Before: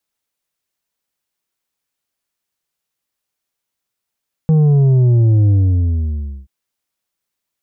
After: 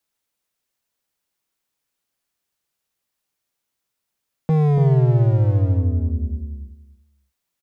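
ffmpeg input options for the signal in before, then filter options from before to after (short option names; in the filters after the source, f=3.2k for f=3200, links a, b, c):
-f lavfi -i "aevalsrc='0.355*clip((1.98-t)/0.98,0,1)*tanh(2*sin(2*PI*160*1.98/log(65/160)*(exp(log(65/160)*t/1.98)-1)))/tanh(2)':d=1.98:s=44100"
-filter_complex "[0:a]acrossover=split=110[a][b];[a]acompressor=threshold=-25dB:ratio=20[c];[c][b]amix=inputs=2:normalize=0,volume=15dB,asoftclip=hard,volume=-15dB,asplit=2[d][e];[e]adelay=285,lowpass=f=830:p=1,volume=-5dB,asplit=2[f][g];[g]adelay=285,lowpass=f=830:p=1,volume=0.18,asplit=2[h][i];[i]adelay=285,lowpass=f=830:p=1,volume=0.18[j];[d][f][h][j]amix=inputs=4:normalize=0"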